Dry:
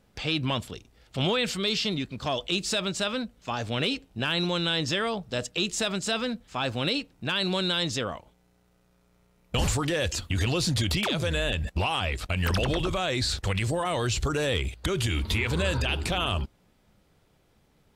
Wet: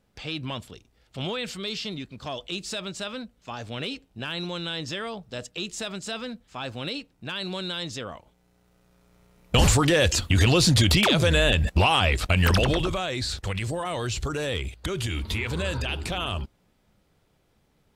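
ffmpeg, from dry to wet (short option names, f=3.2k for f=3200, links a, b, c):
-af "volume=7dB,afade=t=in:st=8.04:d=1.54:silence=0.251189,afade=t=out:st=12.32:d=0.77:silence=0.354813"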